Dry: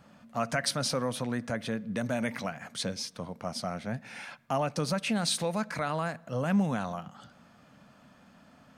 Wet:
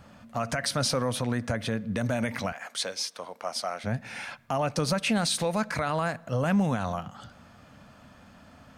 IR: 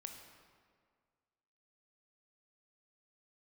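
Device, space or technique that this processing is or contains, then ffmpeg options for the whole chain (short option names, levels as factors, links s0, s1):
car stereo with a boomy subwoofer: -filter_complex "[0:a]asettb=1/sr,asplit=3[s0][s1][s2];[s0]atrim=end=2.524[s3];[s1]atrim=start=2.52:end=3.84,asetpts=PTS-STARTPTS,afade=t=in:d=0.004:c=qsin,afade=t=out:st=1.316:d=0.004:c=qsin,highpass=520[s4];[s2]atrim=start=3.836[s5];[s3][s4]acrossfade=d=0.004:c1=hsin:c2=qsin[s6];[s6][s5]acrossfade=d=0.004:c1=qsin:c2=hsin,lowshelf=f=120:t=q:w=1.5:g=6.5,alimiter=limit=0.075:level=0:latency=1:release=66,volume=1.78"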